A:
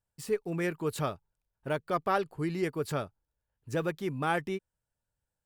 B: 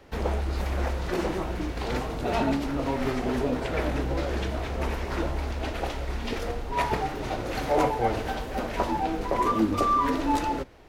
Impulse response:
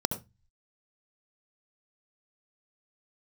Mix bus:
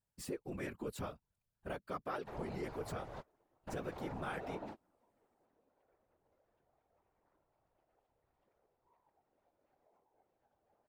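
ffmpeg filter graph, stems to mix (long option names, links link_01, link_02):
-filter_complex "[0:a]volume=2dB,asplit=2[link_01][link_02];[1:a]equalizer=frequency=670:width_type=o:width=2.2:gain=11,acrossover=split=610|1700[link_03][link_04][link_05];[link_03]acompressor=threshold=-32dB:ratio=4[link_06];[link_04]acompressor=threshold=-31dB:ratio=4[link_07];[link_05]acompressor=threshold=-48dB:ratio=4[link_08];[link_06][link_07][link_08]amix=inputs=3:normalize=0,adelay=2150,volume=-6dB[link_09];[link_02]apad=whole_len=574933[link_10];[link_09][link_10]sidechaingate=range=-37dB:threshold=-52dB:ratio=16:detection=peak[link_11];[link_01][link_11]amix=inputs=2:normalize=0,afftfilt=real='hypot(re,im)*cos(2*PI*random(0))':imag='hypot(re,im)*sin(2*PI*random(1))':win_size=512:overlap=0.75,acompressor=threshold=-42dB:ratio=2.5"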